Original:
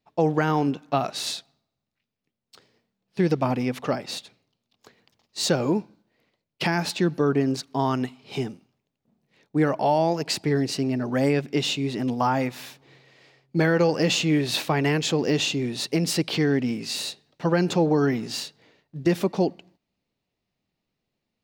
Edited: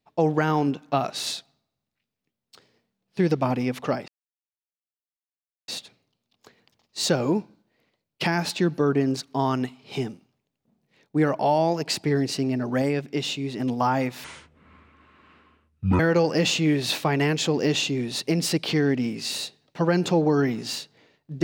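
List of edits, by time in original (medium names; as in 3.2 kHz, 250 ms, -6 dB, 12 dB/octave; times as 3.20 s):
4.08 s: insert silence 1.60 s
11.22–12.00 s: gain -3 dB
12.64–13.64 s: speed 57%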